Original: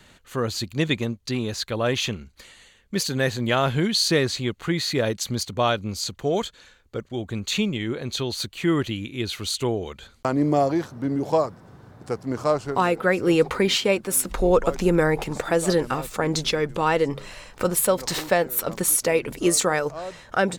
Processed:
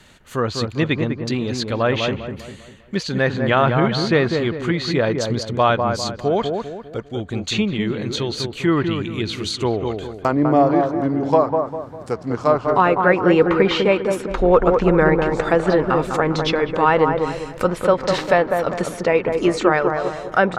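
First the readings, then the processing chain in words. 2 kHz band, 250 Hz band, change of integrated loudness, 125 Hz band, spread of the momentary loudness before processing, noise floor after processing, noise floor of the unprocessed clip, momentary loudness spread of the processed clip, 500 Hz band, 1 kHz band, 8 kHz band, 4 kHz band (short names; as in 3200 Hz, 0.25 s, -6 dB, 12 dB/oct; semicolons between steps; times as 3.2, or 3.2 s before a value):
+5.0 dB, +5.0 dB, +4.5 dB, +4.5 dB, 9 LU, -39 dBFS, -54 dBFS, 10 LU, +5.5 dB, +7.5 dB, -10.0 dB, -0.5 dB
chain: treble ducked by the level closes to 2800 Hz, closed at -19.5 dBFS; dark delay 0.2 s, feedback 43%, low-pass 1500 Hz, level -4.5 dB; dynamic EQ 1100 Hz, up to +4 dB, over -31 dBFS, Q 0.84; gain +3 dB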